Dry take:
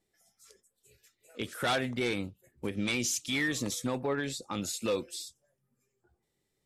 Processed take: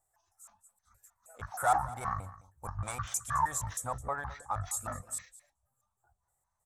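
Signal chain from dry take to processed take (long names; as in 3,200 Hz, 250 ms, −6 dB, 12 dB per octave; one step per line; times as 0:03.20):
pitch shifter gated in a rhythm −12 semitones, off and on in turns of 157 ms
drawn EQ curve 100 Hz 0 dB, 210 Hz −19 dB, 380 Hz −19 dB, 730 Hz +8 dB, 1,300 Hz +4 dB, 2,800 Hz −20 dB, 4,900 Hz −15 dB, 7,700 Hz +8 dB, 14,000 Hz +4 dB
single-tap delay 212 ms −18 dB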